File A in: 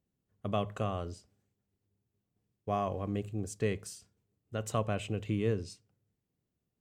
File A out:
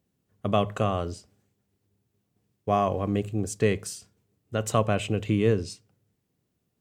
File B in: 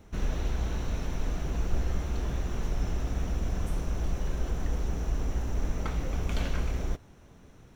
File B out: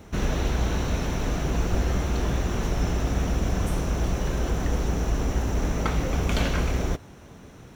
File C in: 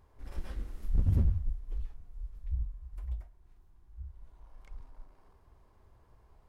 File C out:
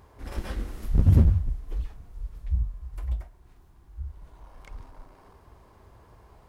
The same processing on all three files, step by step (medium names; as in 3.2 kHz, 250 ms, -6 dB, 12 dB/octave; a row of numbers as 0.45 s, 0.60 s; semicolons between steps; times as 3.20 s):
high-pass 75 Hz 6 dB/octave; normalise loudness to -27 LUFS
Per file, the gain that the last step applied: +9.0 dB, +9.5 dB, +12.0 dB